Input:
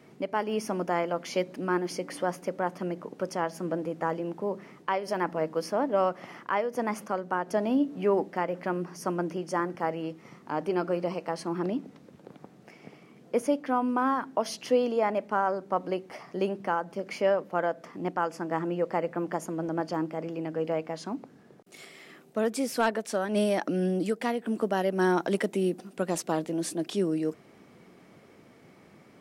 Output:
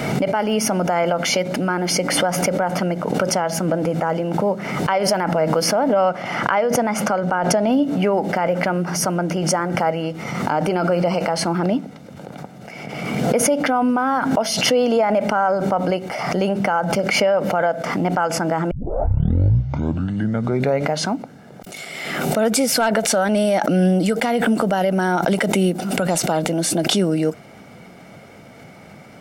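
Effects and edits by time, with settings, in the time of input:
5.93–7.72 s: treble shelf 11 kHz -9.5 dB
18.71 s: tape start 2.35 s
whole clip: comb 1.4 ms, depth 50%; loudness maximiser +20.5 dB; swell ahead of each attack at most 35 dB/s; trim -8.5 dB

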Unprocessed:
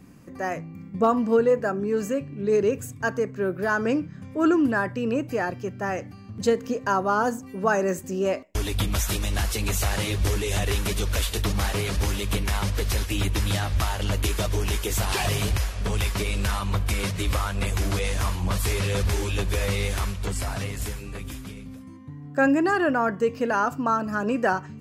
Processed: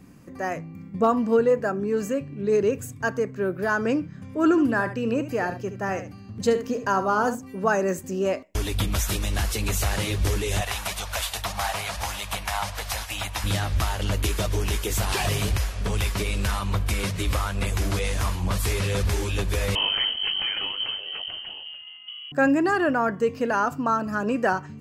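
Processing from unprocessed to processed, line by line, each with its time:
4.21–7.35 s: delay 72 ms -11 dB
10.61–13.44 s: resonant low shelf 530 Hz -10.5 dB, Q 3
19.75–22.32 s: frequency inversion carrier 3.1 kHz

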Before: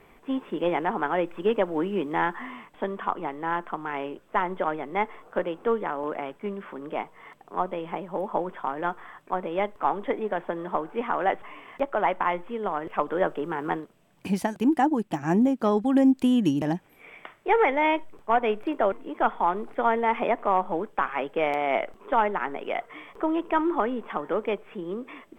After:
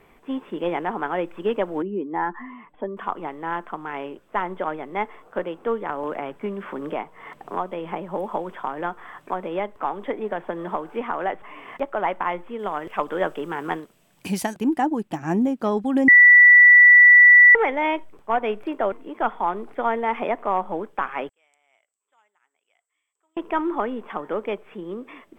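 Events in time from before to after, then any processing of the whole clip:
1.82–2.97 s: spectral contrast enhancement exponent 1.6
5.89–11.77 s: three bands compressed up and down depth 70%
12.59–14.54 s: treble shelf 2.7 kHz +10 dB
16.08–17.55 s: bleep 1.96 kHz -7 dBFS
21.29–23.37 s: band-pass filter 7.7 kHz, Q 13

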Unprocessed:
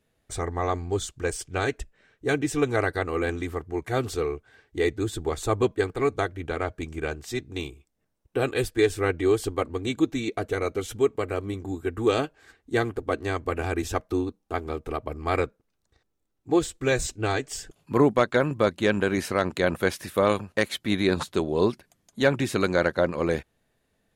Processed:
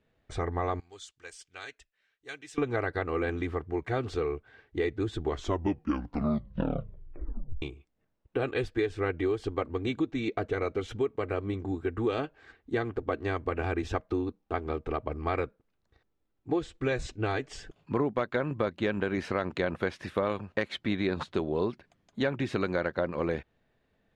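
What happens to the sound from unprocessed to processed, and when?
0.80–2.58 s: pre-emphasis filter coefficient 0.97
5.19 s: tape stop 2.43 s
whole clip: low-pass 3.4 kHz 12 dB/octave; compression 4:1, threshold -26 dBFS

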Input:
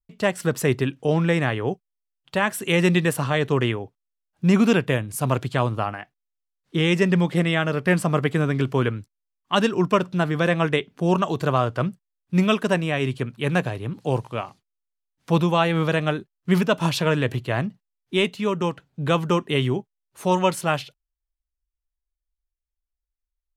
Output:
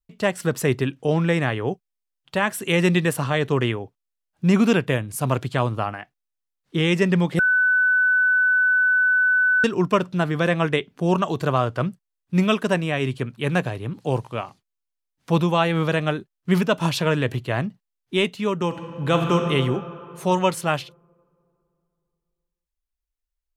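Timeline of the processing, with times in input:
7.39–9.64 s: bleep 1.5 kHz -15 dBFS
18.66–19.35 s: reverb throw, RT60 2.8 s, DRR 2.5 dB

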